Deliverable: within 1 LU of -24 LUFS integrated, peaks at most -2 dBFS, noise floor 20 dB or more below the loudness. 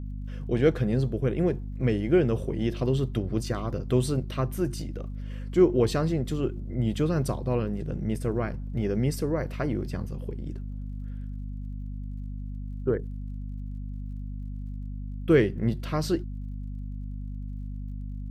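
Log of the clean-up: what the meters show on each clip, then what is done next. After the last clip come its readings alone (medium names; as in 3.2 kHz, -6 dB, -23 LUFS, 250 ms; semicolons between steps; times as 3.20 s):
tick rate 35 per s; hum 50 Hz; highest harmonic 250 Hz; hum level -32 dBFS; loudness -29.0 LUFS; peak level -9.0 dBFS; loudness target -24.0 LUFS
-> de-click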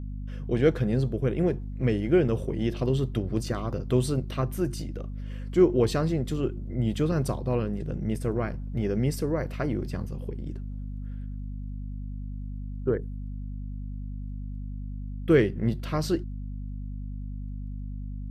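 tick rate 0 per s; hum 50 Hz; highest harmonic 250 Hz; hum level -32 dBFS
-> de-hum 50 Hz, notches 5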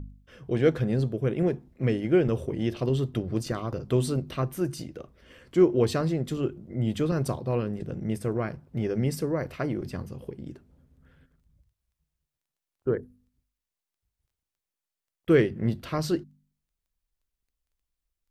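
hum not found; loudness -27.5 LUFS; peak level -8.0 dBFS; loudness target -24.0 LUFS
-> trim +3.5 dB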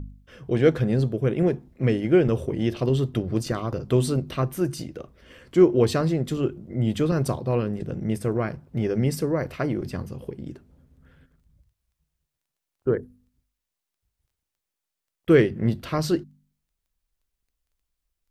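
loudness -24.0 LUFS; peak level -4.5 dBFS; noise floor -85 dBFS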